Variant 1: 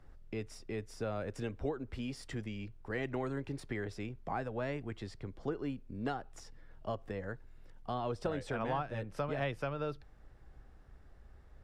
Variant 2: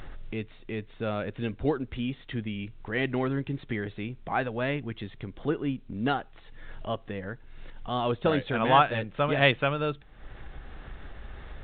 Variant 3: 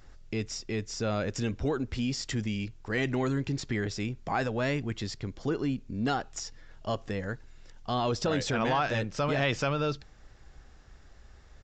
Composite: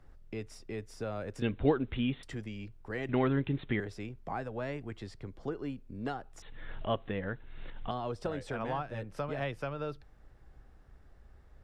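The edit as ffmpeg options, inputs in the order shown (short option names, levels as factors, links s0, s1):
-filter_complex "[1:a]asplit=3[s0][s1][s2];[0:a]asplit=4[s3][s4][s5][s6];[s3]atrim=end=1.422[s7];[s0]atrim=start=1.418:end=2.232[s8];[s4]atrim=start=2.228:end=3.092[s9];[s1]atrim=start=3.088:end=3.802[s10];[s5]atrim=start=3.798:end=6.422[s11];[s2]atrim=start=6.418:end=7.912[s12];[s6]atrim=start=7.908[s13];[s7][s8]acrossfade=d=0.004:c1=hsin:c2=hsin[s14];[s14][s9]acrossfade=d=0.004:c1=hsin:c2=hsin[s15];[s15][s10]acrossfade=d=0.004:c1=hsin:c2=hsin[s16];[s16][s11]acrossfade=d=0.004:c1=hsin:c2=hsin[s17];[s17][s12]acrossfade=d=0.004:c1=hsin:c2=hsin[s18];[s18][s13]acrossfade=d=0.004:c1=hsin:c2=hsin"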